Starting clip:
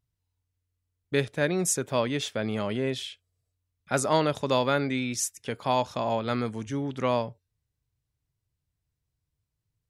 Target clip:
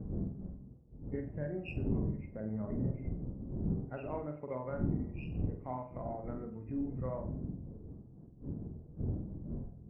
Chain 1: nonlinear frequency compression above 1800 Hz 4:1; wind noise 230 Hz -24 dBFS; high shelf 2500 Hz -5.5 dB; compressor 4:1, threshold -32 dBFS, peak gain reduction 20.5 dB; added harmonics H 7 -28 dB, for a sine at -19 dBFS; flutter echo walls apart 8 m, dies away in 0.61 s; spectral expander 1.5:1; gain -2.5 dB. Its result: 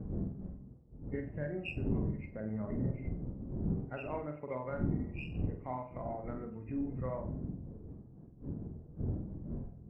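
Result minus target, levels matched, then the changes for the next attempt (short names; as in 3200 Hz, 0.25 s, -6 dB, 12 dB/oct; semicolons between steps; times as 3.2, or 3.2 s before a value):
4000 Hz band +7.0 dB
change: high shelf 2500 Hz -17 dB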